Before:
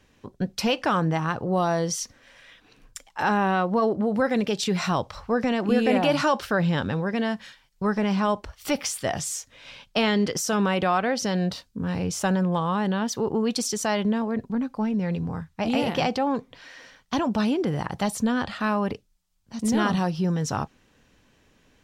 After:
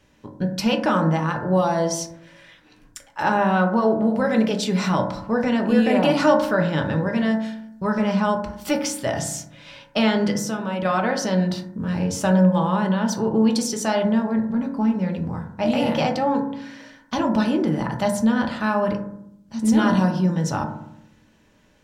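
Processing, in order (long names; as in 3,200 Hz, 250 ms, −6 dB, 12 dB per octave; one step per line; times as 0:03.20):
0:10.33–0:10.85: downward compressor 2.5 to 1, threshold −30 dBFS, peak gain reduction 7.5 dB
convolution reverb RT60 0.75 s, pre-delay 3 ms, DRR 1.5 dB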